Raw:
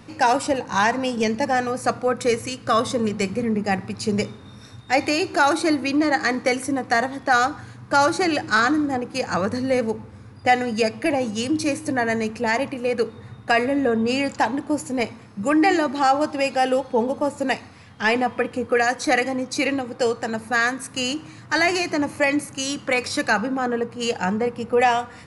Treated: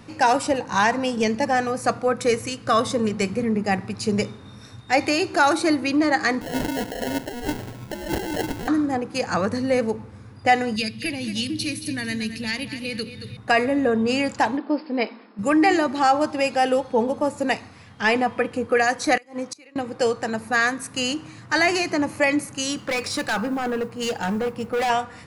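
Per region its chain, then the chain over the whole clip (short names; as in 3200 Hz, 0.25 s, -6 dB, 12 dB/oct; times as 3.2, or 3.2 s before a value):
6.41–8.68 HPF 140 Hz 6 dB/oct + negative-ratio compressor -28 dBFS + sample-rate reducer 1200 Hz
10.76–13.37 EQ curve 200 Hz 0 dB, 320 Hz -7 dB, 700 Hz -20 dB, 1100 Hz -15 dB, 3900 Hz +8 dB, 7100 Hz -7 dB, 11000 Hz +5 dB + feedback echo 0.223 s, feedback 34%, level -12 dB + three-band squash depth 40%
14.57–15.39 brick-wall FIR band-pass 200–5300 Hz + mismatched tape noise reduction decoder only
19.17–19.76 HPF 280 Hz 6 dB/oct + flipped gate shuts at -17 dBFS, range -26 dB
22.77–24.9 overloaded stage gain 20.5 dB + modulation noise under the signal 33 dB
whole clip: dry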